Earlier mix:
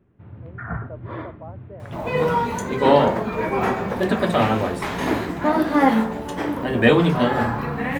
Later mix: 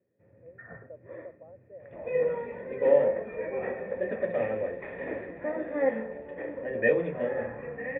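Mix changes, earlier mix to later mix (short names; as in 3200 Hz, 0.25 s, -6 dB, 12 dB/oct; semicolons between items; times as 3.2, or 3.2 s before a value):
first sound: add HPF 110 Hz; master: add vocal tract filter e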